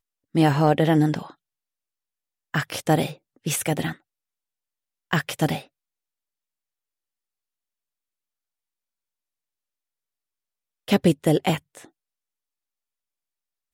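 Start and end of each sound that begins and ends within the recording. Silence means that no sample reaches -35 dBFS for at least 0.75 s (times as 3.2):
2.54–3.93
5.11–5.62
10.88–11.85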